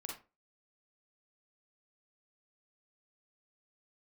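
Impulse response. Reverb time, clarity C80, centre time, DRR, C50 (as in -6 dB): 0.30 s, 11.5 dB, 34 ms, -1.0 dB, 3.0 dB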